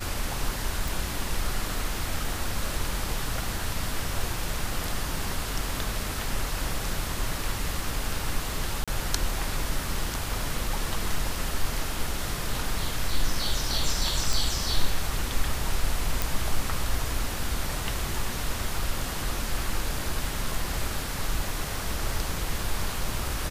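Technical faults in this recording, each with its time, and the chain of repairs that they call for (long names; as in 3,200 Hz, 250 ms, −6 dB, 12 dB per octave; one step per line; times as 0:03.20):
0:00.88: click
0:08.84–0:08.88: drop-out 36 ms
0:14.33: click
0:16.22: click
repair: click removal
repair the gap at 0:08.84, 36 ms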